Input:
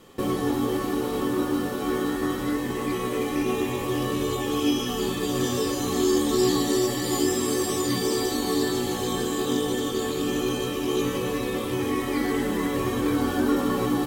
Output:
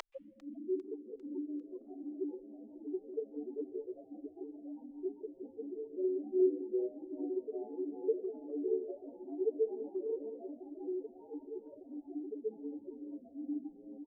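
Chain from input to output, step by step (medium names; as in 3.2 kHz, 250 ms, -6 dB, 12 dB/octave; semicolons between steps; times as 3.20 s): tilt EQ -4.5 dB/octave; harmony voices -12 st -12 dB, -5 st -4 dB, +7 st -9 dB; loudest bins only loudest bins 2; elliptic low-pass 9.5 kHz; on a send at -13 dB: high-order bell 2.5 kHz +13 dB 1.1 oct + reverberation RT60 1.1 s, pre-delay 123 ms; on the sum: upward compressor, threshold -24 dBFS; inverse Chebyshev high-pass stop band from 150 Hz, stop band 60 dB; frequency-shifting echo 399 ms, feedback 55%, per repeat +120 Hz, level -21.5 dB; Shepard-style flanger rising 1.4 Hz; trim +7 dB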